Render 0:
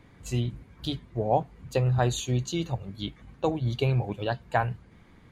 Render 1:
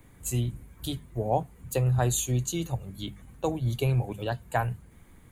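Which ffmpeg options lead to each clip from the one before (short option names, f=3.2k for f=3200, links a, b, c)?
-filter_complex "[0:a]lowshelf=f=81:g=9.5,bandreject=f=50:t=h:w=6,bandreject=f=100:t=h:w=6,bandreject=f=150:t=h:w=6,bandreject=f=200:t=h:w=6,acrossover=split=250[a][b];[b]aexciter=amount=4.4:drive=8.8:freq=7.2k[c];[a][c]amix=inputs=2:normalize=0,volume=-2.5dB"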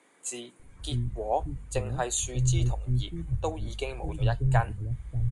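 -filter_complex "[0:a]acrossover=split=300[a][b];[a]adelay=590[c];[c][b]amix=inputs=2:normalize=0,asubboost=boost=9:cutoff=63,aresample=22050,aresample=44100"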